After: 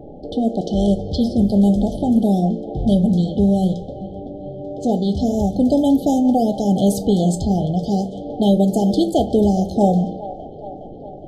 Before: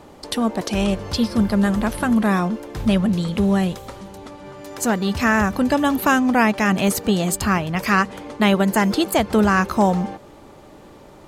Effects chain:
low-pass that shuts in the quiet parts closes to 1,100 Hz, open at −14 dBFS
tilt shelving filter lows +3.5 dB, about 1,300 Hz
in parallel at +0.5 dB: downward compressor, threshold −31 dBFS, peak gain reduction 20 dB
on the sum: linear-phase brick-wall band-stop 840–3,000 Hz
delay with a band-pass on its return 413 ms, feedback 63%, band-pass 1,100 Hz, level −11 dB
on a send at −8.5 dB: convolution reverb RT60 0.35 s, pre-delay 7 ms
on the sum: level −2 dB

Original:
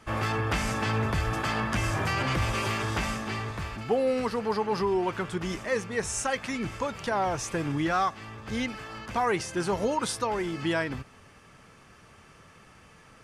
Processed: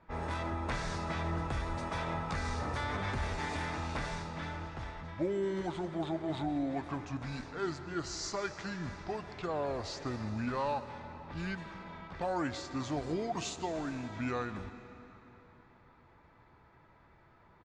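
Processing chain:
speed change −25%
low-pass that shuts in the quiet parts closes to 2,100 Hz, open at −25.5 dBFS
convolution reverb RT60 3.4 s, pre-delay 75 ms, DRR 11 dB
downsampling to 32,000 Hz
level −8 dB

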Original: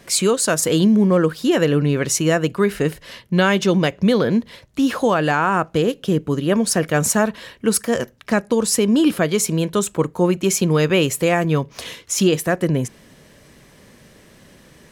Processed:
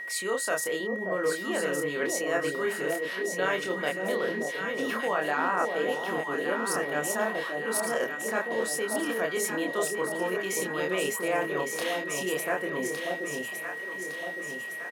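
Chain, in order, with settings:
double-tracking delay 27 ms −4 dB
reversed playback
downward compressor 6 to 1, threshold −23 dBFS, peak gain reduction 14 dB
reversed playback
high-pass filter 470 Hz 12 dB per octave
parametric band 5,800 Hz −7.5 dB 1.8 octaves
notch filter 7,600 Hz, Q 24
on a send: delay that swaps between a low-pass and a high-pass 580 ms, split 830 Hz, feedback 72%, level −3 dB
on the sum: steady tone 1,900 Hz −35 dBFS

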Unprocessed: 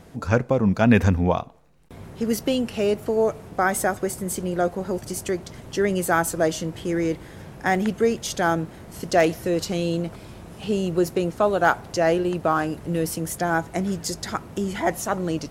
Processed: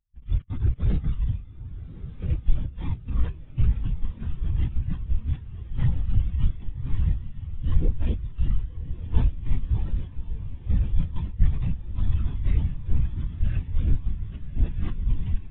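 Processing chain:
spectral envelope flattened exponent 0.1
parametric band 210 Hz +10 dB 0.39 octaves
notch filter 850 Hz, Q 12
full-wave rectification
in parallel at +1 dB: speech leveller within 4 dB 0.5 s
on the sum: linear-prediction vocoder at 8 kHz whisper
soft clipping −13.5 dBFS, distortion −10 dB
on a send: feedback delay with all-pass diffusion 1,122 ms, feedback 70%, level −4.5 dB
on the sum: every bin expanded away from the loudest bin 2.5 to 1

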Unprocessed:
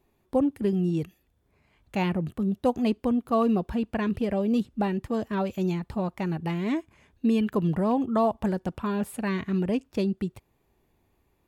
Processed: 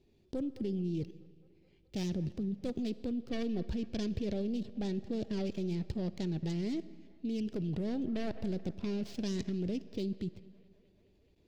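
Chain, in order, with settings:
stylus tracing distortion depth 0.49 ms
delay with a band-pass on its return 214 ms, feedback 68%, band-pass 1,100 Hz, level −21 dB
in parallel at −3 dB: downward compressor 5 to 1, threshold −34 dBFS, peak gain reduction 15 dB
on the sum: drawn EQ curve 420 Hz 0 dB, 1,100 Hz −18 dB, 2,900 Hz −2 dB, 4,800 Hz +3 dB, 11,000 Hz −18 dB
output level in coarse steps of 17 dB
on a send at −17 dB: convolution reverb RT60 1.8 s, pre-delay 15 ms

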